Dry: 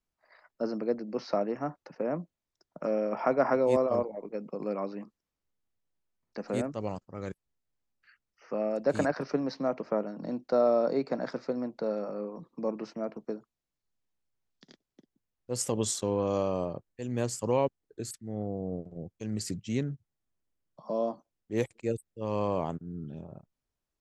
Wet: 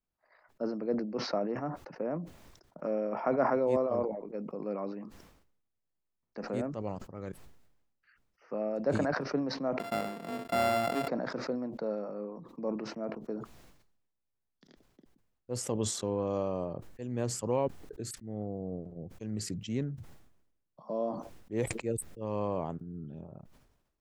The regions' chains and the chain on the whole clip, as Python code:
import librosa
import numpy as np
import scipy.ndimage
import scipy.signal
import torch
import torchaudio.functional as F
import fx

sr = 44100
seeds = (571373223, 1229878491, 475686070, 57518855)

y = fx.chain(x, sr, fx.sample_sort(block=64),
    fx.low_shelf(hz=86.0, db=-11.5),
    fx.notch(hz=6200.0, q=8.8), at=(9.79, 11.08))
y = fx.high_shelf(y, sr, hz=2700.0, db=-9.0)
y = fx.sustainer(y, sr, db_per_s=60.0)
y = y * 10.0 ** (-3.0 / 20.0)